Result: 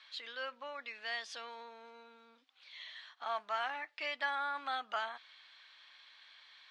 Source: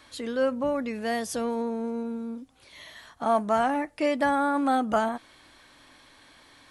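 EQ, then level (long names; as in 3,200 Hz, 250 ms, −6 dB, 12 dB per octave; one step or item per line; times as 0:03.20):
high-pass filter 1,400 Hz 12 dB per octave
transistor ladder low-pass 4,700 Hz, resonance 35%
+3.0 dB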